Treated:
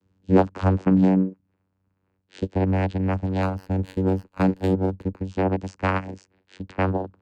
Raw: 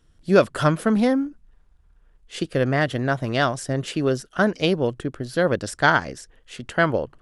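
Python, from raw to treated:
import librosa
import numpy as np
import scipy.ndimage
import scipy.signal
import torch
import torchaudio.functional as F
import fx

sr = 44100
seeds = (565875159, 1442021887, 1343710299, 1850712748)

y = fx.vocoder(x, sr, bands=8, carrier='saw', carrier_hz=94.4)
y = fx.running_max(y, sr, window=5, at=(3.42, 5.22))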